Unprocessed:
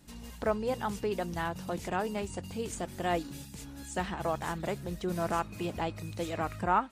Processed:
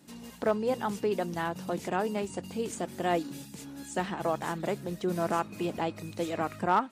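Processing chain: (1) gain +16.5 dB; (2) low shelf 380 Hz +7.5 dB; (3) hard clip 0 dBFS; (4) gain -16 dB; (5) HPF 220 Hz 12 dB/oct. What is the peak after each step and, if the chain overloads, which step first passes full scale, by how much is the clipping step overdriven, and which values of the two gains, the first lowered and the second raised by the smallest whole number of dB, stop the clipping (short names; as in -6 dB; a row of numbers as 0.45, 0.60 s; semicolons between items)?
+1.5, +3.0, 0.0, -16.0, -13.0 dBFS; step 1, 3.0 dB; step 1 +13.5 dB, step 4 -13 dB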